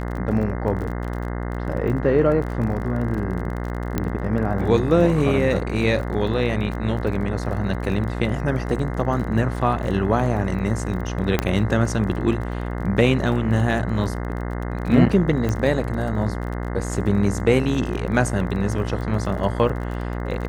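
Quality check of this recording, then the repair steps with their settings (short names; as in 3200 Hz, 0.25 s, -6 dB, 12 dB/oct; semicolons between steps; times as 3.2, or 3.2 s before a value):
buzz 60 Hz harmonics 35 -27 dBFS
crackle 30/s -30 dBFS
3.98 pop -9 dBFS
11.39 pop -5 dBFS
15.49 pop -12 dBFS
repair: de-click; de-hum 60 Hz, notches 35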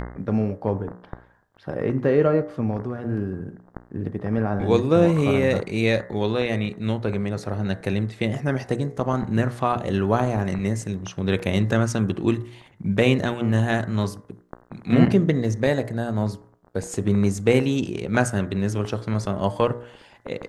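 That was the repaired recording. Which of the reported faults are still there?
11.39 pop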